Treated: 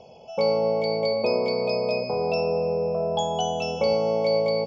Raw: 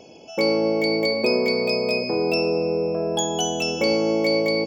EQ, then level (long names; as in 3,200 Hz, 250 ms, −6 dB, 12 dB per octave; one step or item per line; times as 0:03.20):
high-frequency loss of the air 200 metres
phaser with its sweep stopped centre 750 Hz, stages 4
+3.0 dB